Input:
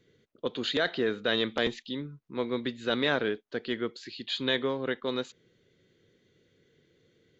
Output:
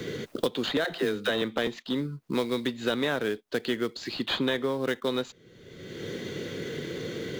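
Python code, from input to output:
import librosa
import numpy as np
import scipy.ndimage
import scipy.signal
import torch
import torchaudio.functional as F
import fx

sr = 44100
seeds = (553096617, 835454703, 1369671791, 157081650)

p1 = fx.sample_hold(x, sr, seeds[0], rate_hz=4600.0, jitter_pct=20)
p2 = x + (p1 * 10.0 ** (-12.0 / 20.0))
p3 = fx.dispersion(p2, sr, late='lows', ms=64.0, hz=330.0, at=(0.84, 1.42))
y = fx.band_squash(p3, sr, depth_pct=100)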